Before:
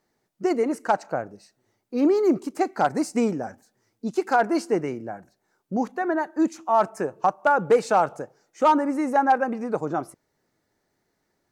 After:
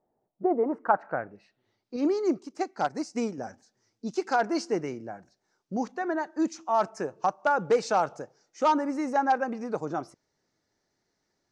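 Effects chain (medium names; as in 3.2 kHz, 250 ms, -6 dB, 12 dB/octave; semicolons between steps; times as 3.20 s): low-pass sweep 720 Hz -> 5.7 kHz, 0.49–1.99 s; 1.96–3.38 s: upward expansion 1.5:1, over -30 dBFS; trim -5 dB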